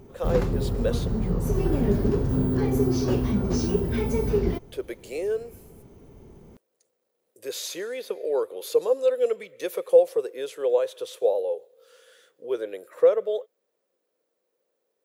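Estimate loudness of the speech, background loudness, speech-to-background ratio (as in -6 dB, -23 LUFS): -26.5 LUFS, -25.5 LUFS, -1.0 dB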